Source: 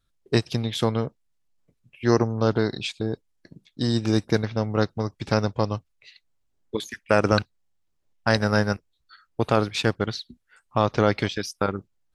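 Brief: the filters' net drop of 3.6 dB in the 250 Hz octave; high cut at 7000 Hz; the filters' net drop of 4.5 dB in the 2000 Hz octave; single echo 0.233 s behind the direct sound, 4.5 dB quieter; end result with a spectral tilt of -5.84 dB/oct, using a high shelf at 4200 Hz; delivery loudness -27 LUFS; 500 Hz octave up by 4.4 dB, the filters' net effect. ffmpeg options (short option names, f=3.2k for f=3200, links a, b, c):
-af "lowpass=7k,equalizer=f=250:t=o:g=-7.5,equalizer=f=500:t=o:g=7.5,equalizer=f=2k:t=o:g=-5.5,highshelf=f=4.2k:g=-7.5,aecho=1:1:233:0.596,volume=-4dB"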